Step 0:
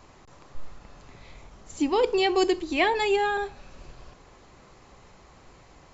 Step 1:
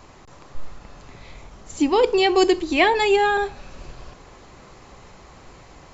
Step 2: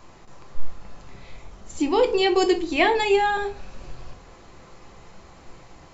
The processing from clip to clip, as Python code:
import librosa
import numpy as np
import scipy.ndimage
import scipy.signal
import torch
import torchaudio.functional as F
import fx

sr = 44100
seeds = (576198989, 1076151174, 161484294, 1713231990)

y1 = fx.rider(x, sr, range_db=10, speed_s=0.5)
y1 = y1 * librosa.db_to_amplitude(6.5)
y2 = fx.room_shoebox(y1, sr, seeds[0], volume_m3=160.0, walls='furnished', distance_m=0.75)
y2 = y2 * librosa.db_to_amplitude(-3.5)